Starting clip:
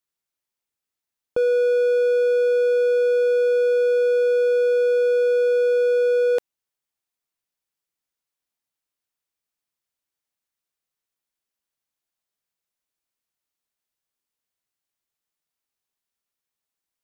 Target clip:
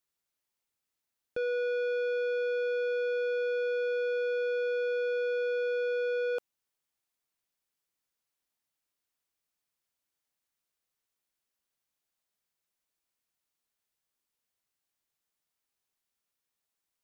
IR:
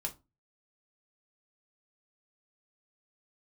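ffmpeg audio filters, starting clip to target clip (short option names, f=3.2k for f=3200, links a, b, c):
-af "asoftclip=type=tanh:threshold=-29.5dB"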